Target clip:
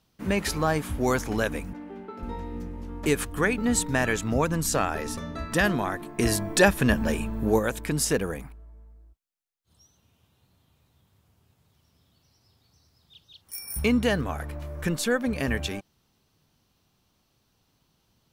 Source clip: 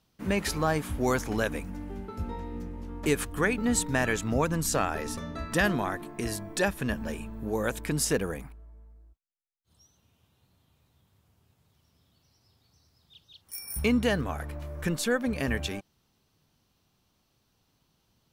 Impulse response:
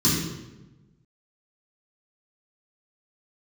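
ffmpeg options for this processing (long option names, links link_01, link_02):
-filter_complex "[0:a]asettb=1/sr,asplit=3[link_01][link_02][link_03];[link_01]atrim=end=1.734[link_04];[link_02]atrim=start=1.73:end=2.23,asetpts=PTS-STARTPTS,afade=type=in:duration=0.004:curve=qsin,afade=type=out:start_time=0.496:duration=0.004:curve=qsin,acrossover=split=190 3900:gain=0.0631 1 0.178[link_05][link_06][link_07];[link_05][link_06][link_07]amix=inputs=3:normalize=0[link_08];[link_03]atrim=start=2.226[link_09];[link_04][link_08]acrossfade=duration=0.004:curve1=hsin:curve2=qsin[link_10];[link_10][link_09]acrossfade=duration=0.004:curve1=qsin:curve2=hsin,asplit=3[link_11][link_12][link_13];[link_11]afade=type=out:start_time=6.18:duration=0.02[link_14];[link_12]acontrast=66,afade=type=in:start_time=6.18:duration=0.02,afade=type=out:start_time=7.58:duration=0.02[link_15];[link_13]afade=type=in:start_time=7.58:duration=0.02[link_16];[link_14][link_15][link_16]amix=inputs=3:normalize=0,volume=2dB"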